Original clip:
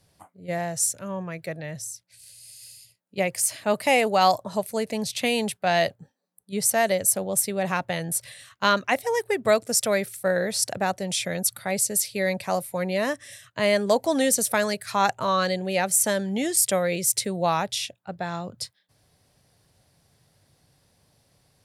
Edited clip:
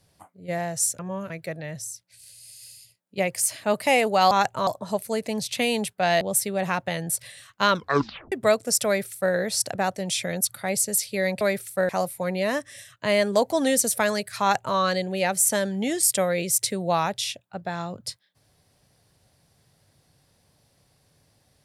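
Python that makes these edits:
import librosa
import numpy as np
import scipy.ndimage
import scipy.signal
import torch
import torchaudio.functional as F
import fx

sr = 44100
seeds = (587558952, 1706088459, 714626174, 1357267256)

y = fx.edit(x, sr, fx.reverse_span(start_s=0.99, length_s=0.31),
    fx.cut(start_s=5.85, length_s=1.38),
    fx.tape_stop(start_s=8.72, length_s=0.62),
    fx.duplicate(start_s=9.88, length_s=0.48, to_s=12.43),
    fx.duplicate(start_s=14.95, length_s=0.36, to_s=4.31), tone=tone)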